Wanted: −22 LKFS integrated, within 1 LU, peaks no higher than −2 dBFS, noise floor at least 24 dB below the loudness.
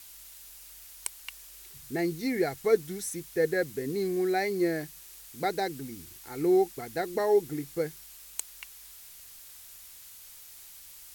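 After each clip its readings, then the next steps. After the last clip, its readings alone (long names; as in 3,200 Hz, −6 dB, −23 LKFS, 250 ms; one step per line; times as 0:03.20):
background noise floor −49 dBFS; target noise floor −54 dBFS; integrated loudness −30.0 LKFS; sample peak −11.0 dBFS; target loudness −22.0 LKFS
→ broadband denoise 6 dB, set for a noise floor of −49 dBFS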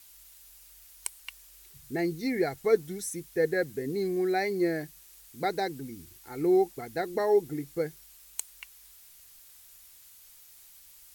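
background noise floor −54 dBFS; integrated loudness −30.0 LKFS; sample peak −11.5 dBFS; target loudness −22.0 LKFS
→ level +8 dB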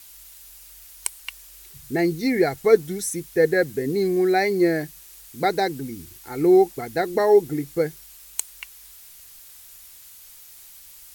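integrated loudness −22.0 LKFS; sample peak −3.5 dBFS; background noise floor −46 dBFS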